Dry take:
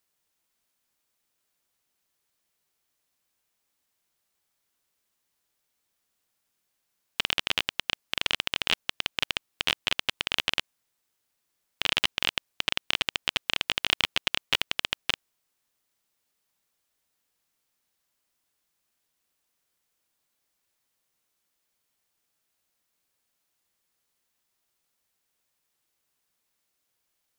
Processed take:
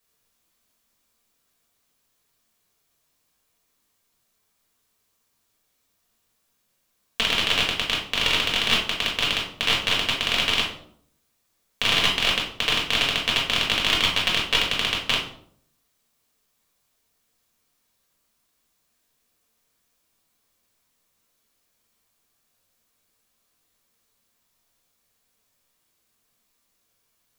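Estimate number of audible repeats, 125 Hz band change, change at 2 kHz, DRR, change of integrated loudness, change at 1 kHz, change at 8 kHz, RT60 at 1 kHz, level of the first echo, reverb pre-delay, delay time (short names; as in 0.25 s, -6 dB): none, +10.5 dB, +6.0 dB, -4.0 dB, +6.5 dB, +7.5 dB, +7.0 dB, 0.60 s, none, 4 ms, none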